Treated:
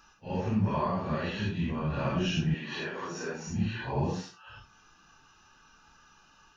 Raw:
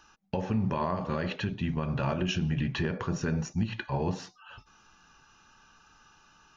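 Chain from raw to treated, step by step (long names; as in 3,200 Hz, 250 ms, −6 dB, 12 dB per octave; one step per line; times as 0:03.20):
random phases in long frames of 200 ms
0:02.54–0:03.47: high-pass filter 360 Hz 12 dB per octave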